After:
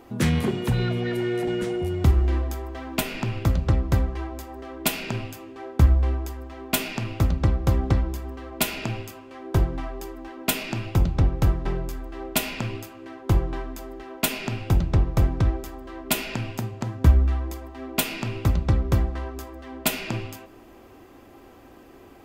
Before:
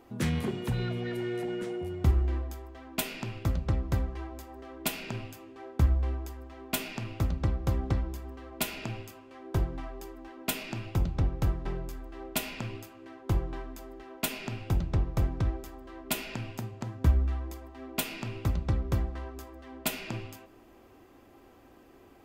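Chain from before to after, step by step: 1.47–3.69 s: three bands compressed up and down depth 40%; trim +7.5 dB

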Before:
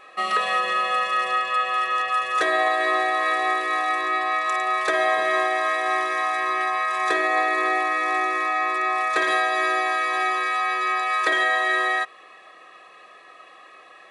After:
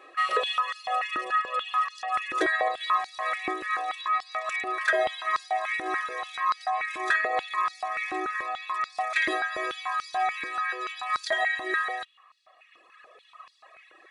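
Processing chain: reverb removal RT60 2 s; step-sequenced high-pass 6.9 Hz 320–4700 Hz; trim -5 dB

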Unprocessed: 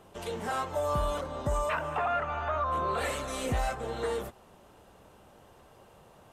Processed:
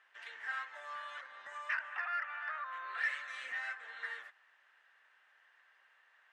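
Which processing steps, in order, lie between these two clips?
ladder band-pass 1.9 kHz, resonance 75%; in parallel at -6 dB: saturation -35 dBFS, distortion -16 dB; on the sum: trim +1.5 dB

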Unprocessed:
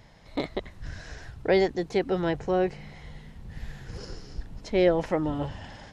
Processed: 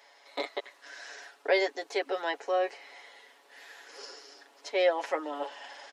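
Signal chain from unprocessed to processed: Bessel high-pass 630 Hz, order 8; comb 7.1 ms

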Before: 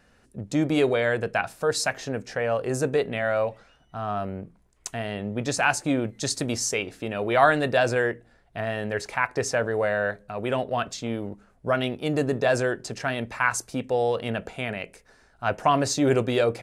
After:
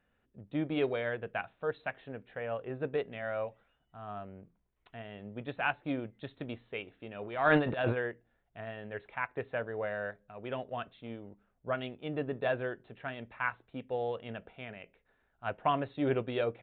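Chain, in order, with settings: 7.23–7.97 s: transient shaper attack -11 dB, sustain +11 dB; resampled via 8 kHz; upward expansion 1.5:1, over -32 dBFS; trim -7 dB

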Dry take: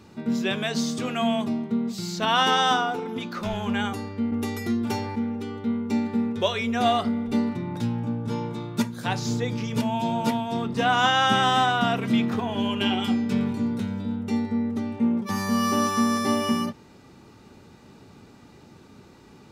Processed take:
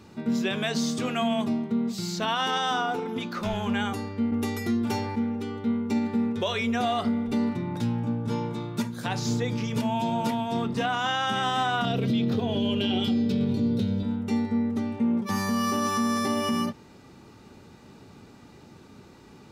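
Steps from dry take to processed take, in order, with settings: 11.85–14.03 s: graphic EQ 125/500/1000/2000/4000/8000 Hz +7/+7/-9/-6/+9/-7 dB; peak limiter -17.5 dBFS, peak gain reduction 8.5 dB

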